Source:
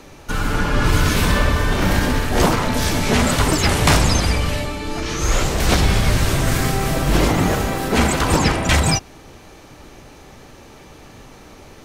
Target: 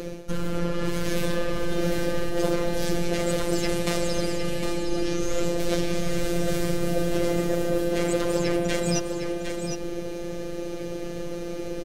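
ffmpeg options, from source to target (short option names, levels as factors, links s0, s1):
-filter_complex "[0:a]lowshelf=f=680:t=q:w=3:g=7.5,acrossover=split=520[s0][s1];[s0]alimiter=limit=0.447:level=0:latency=1[s2];[s2][s1]amix=inputs=2:normalize=0,aeval=exprs='1.19*(cos(1*acos(clip(val(0)/1.19,-1,1)))-cos(1*PI/2))+0.0211*(cos(6*acos(clip(val(0)/1.19,-1,1)))-cos(6*PI/2))':c=same,areverse,acompressor=threshold=0.0631:ratio=6,areverse,afftfilt=real='hypot(re,im)*cos(PI*b)':imag='0':win_size=1024:overlap=0.75,aecho=1:1:758:0.447,volume=1.78"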